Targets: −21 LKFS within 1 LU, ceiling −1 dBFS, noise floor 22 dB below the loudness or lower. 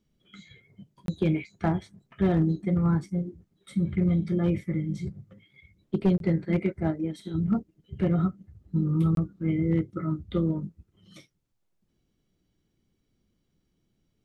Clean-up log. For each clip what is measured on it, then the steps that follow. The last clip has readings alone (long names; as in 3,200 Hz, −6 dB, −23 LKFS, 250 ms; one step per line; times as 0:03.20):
share of clipped samples 0.2%; peaks flattened at −16.0 dBFS; number of dropouts 3; longest dropout 22 ms; integrated loudness −27.5 LKFS; sample peak −16.0 dBFS; target loudness −21.0 LKFS
→ clipped peaks rebuilt −16 dBFS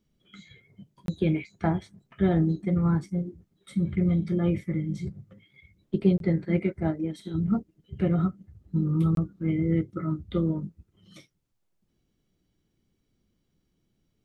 share of clipped samples 0.0%; number of dropouts 3; longest dropout 22 ms
→ repair the gap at 0:01.06/0:06.18/0:09.15, 22 ms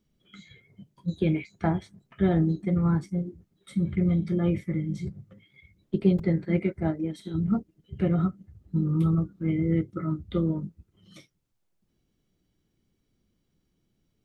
number of dropouts 0; integrated loudness −27.5 LKFS; sample peak −10.0 dBFS; target loudness −21.0 LKFS
→ level +6.5 dB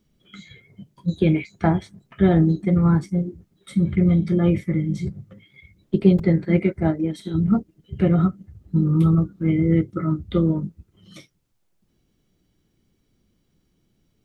integrated loudness −21.0 LKFS; sample peak −3.5 dBFS; background noise floor −68 dBFS